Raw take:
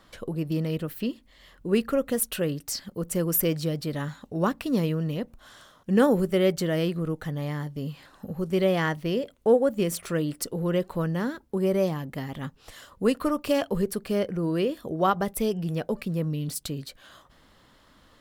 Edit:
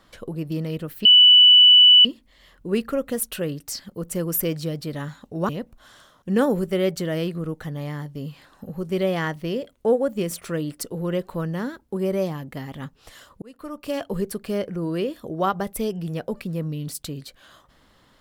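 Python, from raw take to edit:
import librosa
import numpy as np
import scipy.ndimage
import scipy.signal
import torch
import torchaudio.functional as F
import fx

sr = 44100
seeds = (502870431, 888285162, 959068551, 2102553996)

y = fx.edit(x, sr, fx.insert_tone(at_s=1.05, length_s=1.0, hz=2970.0, db=-8.0),
    fx.cut(start_s=4.49, length_s=0.61),
    fx.fade_in_span(start_s=13.03, length_s=0.77), tone=tone)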